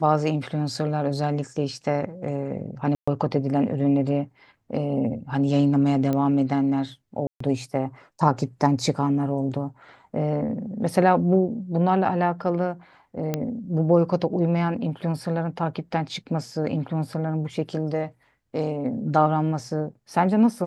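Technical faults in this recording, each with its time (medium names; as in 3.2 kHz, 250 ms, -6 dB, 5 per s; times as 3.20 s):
2.95–3.08 s: dropout 125 ms
6.13 s: pop -14 dBFS
7.27–7.40 s: dropout 134 ms
13.34 s: pop -11 dBFS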